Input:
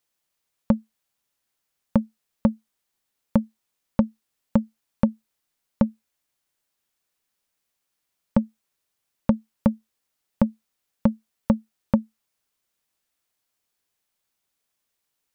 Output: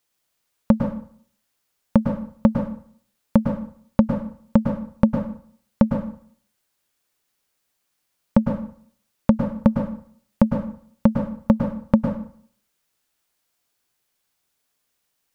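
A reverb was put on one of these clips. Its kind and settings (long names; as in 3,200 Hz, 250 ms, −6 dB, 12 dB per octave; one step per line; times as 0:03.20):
dense smooth reverb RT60 0.55 s, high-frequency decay 0.8×, pre-delay 95 ms, DRR 3.5 dB
level +3.5 dB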